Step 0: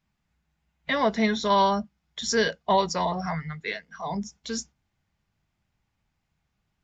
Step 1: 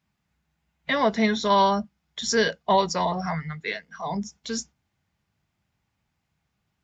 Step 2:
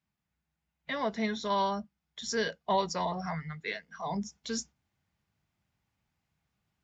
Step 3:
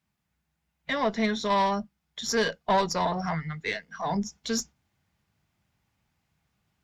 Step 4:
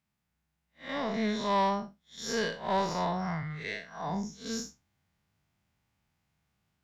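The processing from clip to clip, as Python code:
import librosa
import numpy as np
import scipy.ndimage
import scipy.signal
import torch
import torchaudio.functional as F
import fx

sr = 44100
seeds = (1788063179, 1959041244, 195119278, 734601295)

y1 = scipy.signal.sosfilt(scipy.signal.butter(2, 63.0, 'highpass', fs=sr, output='sos'), x)
y1 = y1 * 10.0 ** (1.5 / 20.0)
y2 = fx.rider(y1, sr, range_db=4, speed_s=2.0)
y2 = y2 * 10.0 ** (-8.5 / 20.0)
y3 = fx.tube_stage(y2, sr, drive_db=22.0, bias=0.45)
y3 = y3 * 10.0 ** (7.5 / 20.0)
y4 = fx.spec_blur(y3, sr, span_ms=137.0)
y4 = y4 * 10.0 ** (-1.5 / 20.0)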